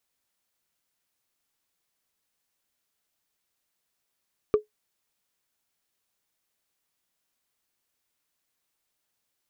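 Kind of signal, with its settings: wood hit, lowest mode 424 Hz, decay 0.13 s, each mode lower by 12 dB, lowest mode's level -12 dB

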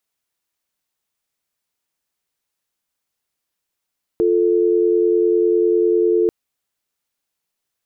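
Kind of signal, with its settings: call progress tone dial tone, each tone -15.5 dBFS 2.09 s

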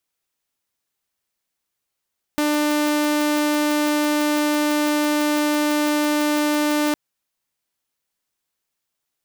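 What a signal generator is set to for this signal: tone saw 298 Hz -15 dBFS 4.56 s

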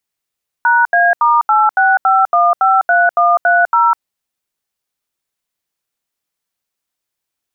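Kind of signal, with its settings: DTMF "#A*865153130", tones 202 ms, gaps 78 ms, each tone -10.5 dBFS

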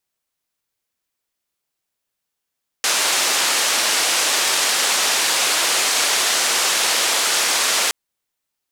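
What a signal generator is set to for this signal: noise band 440–7800 Hz, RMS -18.5 dBFS 5.07 s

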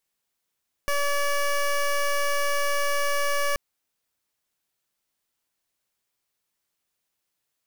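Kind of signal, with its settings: pulse 572 Hz, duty 15% -23.5 dBFS 2.68 s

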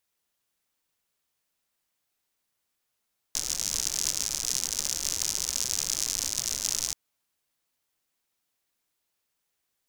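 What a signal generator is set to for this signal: rain from filtered ticks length 3.58 s, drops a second 100, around 6.1 kHz, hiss -15 dB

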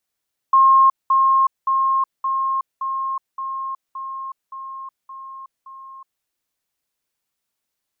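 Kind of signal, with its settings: level ladder 1.07 kHz -9 dBFS, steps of -3 dB, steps 10, 0.37 s 0.20 s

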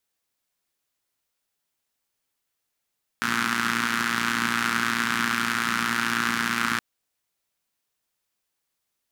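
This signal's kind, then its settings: four-cylinder engine model, steady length 3.57 s, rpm 3500, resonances 230/1400 Hz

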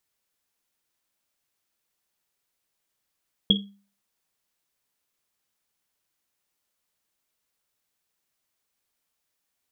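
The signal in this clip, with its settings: Risset drum, pitch 200 Hz, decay 0.41 s, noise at 3.3 kHz, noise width 150 Hz, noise 50%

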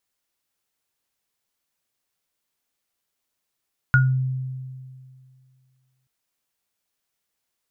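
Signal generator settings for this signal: sine partials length 2.13 s, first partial 130 Hz, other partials 1.44 kHz, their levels 2 dB, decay 2.21 s, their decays 0.24 s, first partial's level -13 dB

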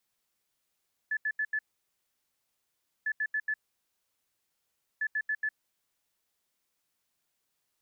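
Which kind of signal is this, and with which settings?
beep pattern sine 1.73 kHz, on 0.06 s, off 0.08 s, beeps 4, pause 1.47 s, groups 3, -27 dBFS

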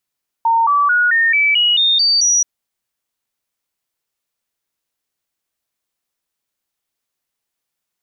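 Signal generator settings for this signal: stepped sine 915 Hz up, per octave 3, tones 9, 0.22 s, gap 0.00 s -10.5 dBFS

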